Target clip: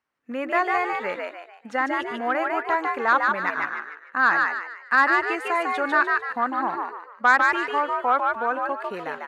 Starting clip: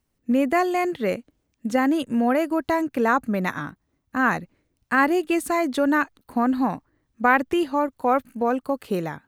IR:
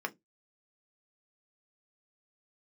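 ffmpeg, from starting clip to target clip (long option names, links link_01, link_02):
-filter_complex "[0:a]bandpass=frequency=1400:width_type=q:width=1.5:csg=0,aeval=exprs='0.398*(cos(1*acos(clip(val(0)/0.398,-1,1)))-cos(1*PI/2))+0.00562*(cos(2*acos(clip(val(0)/0.398,-1,1)))-cos(2*PI/2))+0.0224*(cos(5*acos(clip(val(0)/0.398,-1,1)))-cos(5*PI/2))':channel_layout=same,asplit=6[link_01][link_02][link_03][link_04][link_05][link_06];[link_02]adelay=149,afreqshift=77,volume=-3dB[link_07];[link_03]adelay=298,afreqshift=154,volume=-11.4dB[link_08];[link_04]adelay=447,afreqshift=231,volume=-19.8dB[link_09];[link_05]adelay=596,afreqshift=308,volume=-28.2dB[link_10];[link_06]adelay=745,afreqshift=385,volume=-36.6dB[link_11];[link_01][link_07][link_08][link_09][link_10][link_11]amix=inputs=6:normalize=0,volume=3dB"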